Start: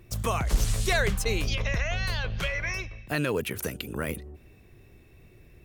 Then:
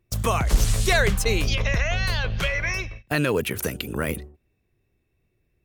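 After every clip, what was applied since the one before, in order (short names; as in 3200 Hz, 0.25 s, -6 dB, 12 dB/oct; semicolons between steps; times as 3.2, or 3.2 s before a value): gate -40 dBFS, range -22 dB; gain +5 dB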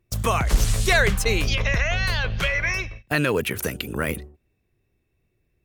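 dynamic EQ 1800 Hz, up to +3 dB, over -34 dBFS, Q 0.84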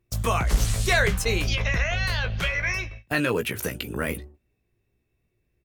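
doubler 17 ms -8 dB; gain -3 dB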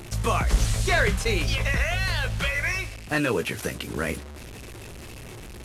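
delta modulation 64 kbps, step -34 dBFS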